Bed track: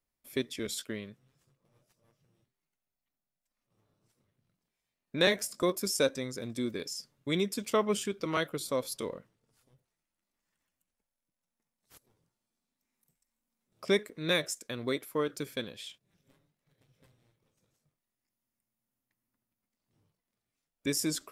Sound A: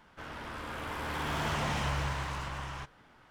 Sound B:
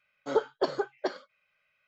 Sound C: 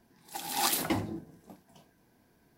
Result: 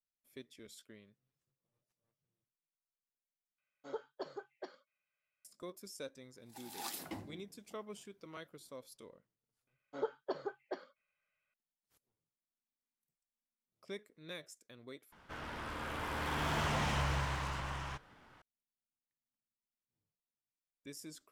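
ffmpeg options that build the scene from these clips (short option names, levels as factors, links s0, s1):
-filter_complex "[2:a]asplit=2[s0][s1];[0:a]volume=0.119[s2];[3:a]highpass=43[s3];[s1]aemphasis=mode=reproduction:type=50fm[s4];[s2]asplit=3[s5][s6][s7];[s5]atrim=end=3.584[s8];[s0]atrim=end=1.87,asetpts=PTS-STARTPTS,volume=0.15[s9];[s6]atrim=start=5.446:end=15.124[s10];[1:a]atrim=end=3.3,asetpts=PTS-STARTPTS,volume=0.794[s11];[s7]atrim=start=18.416[s12];[s3]atrim=end=2.57,asetpts=PTS-STARTPTS,volume=0.178,afade=t=in:d=0.004:c=hsin,afade=t=out:st=2.566:d=0.004:c=hsin,adelay=6210[s13];[s4]atrim=end=1.87,asetpts=PTS-STARTPTS,volume=0.266,afade=t=in:d=0.004:c=hsin,afade=t=out:st=1.866:d=0.004:c=hsin,adelay=9670[s14];[s8][s9]acrossfade=d=0.004:c1=hsin:c2=hsin[s15];[s15][s10]acrossfade=d=0.004:c1=hsin:c2=hsin[s16];[s16][s11]acrossfade=d=0.004:c1=hsin:c2=hsin[s17];[s17][s12]acrossfade=d=0.004:c1=hsin:c2=hsin[s18];[s18][s13][s14]amix=inputs=3:normalize=0"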